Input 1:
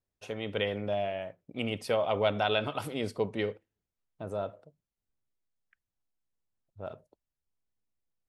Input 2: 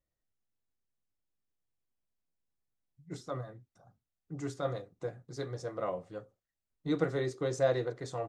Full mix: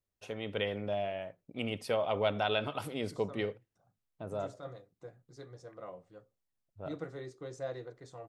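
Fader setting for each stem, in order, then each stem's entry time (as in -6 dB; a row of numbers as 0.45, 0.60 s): -3.0, -11.0 dB; 0.00, 0.00 s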